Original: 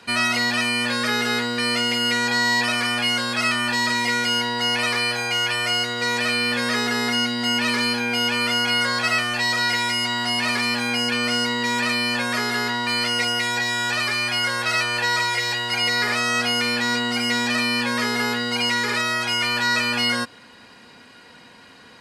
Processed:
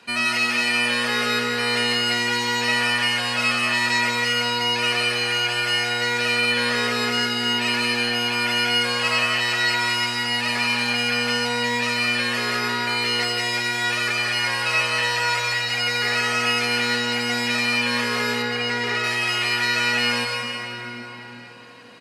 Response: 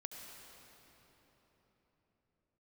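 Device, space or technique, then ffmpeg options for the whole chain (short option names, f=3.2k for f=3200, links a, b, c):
PA in a hall: -filter_complex "[0:a]highpass=120,equalizer=f=2.6k:t=o:w=0.25:g=5,aecho=1:1:177:0.596[a];[1:a]atrim=start_sample=2205[b];[a][b]afir=irnorm=-1:irlink=0,asettb=1/sr,asplit=3[c][d][e];[c]atrim=end=18.424[f];[d]atrim=start=18.42:end=19.04,asetpts=PTS-STARTPTS,afade=t=in:d=0.004:c=qsin,afade=t=out:st=0.616:d=0.004:c=qsin,aemphasis=mode=reproduction:type=cd[g];[e]atrim=start=19.036[h];[f][g]acrossfade=d=0.004:c1=hsin:c2=qsin[i];[i][h]acrossfade=d=0.004:c1=qsin:c2=hsin,volume=1.5dB"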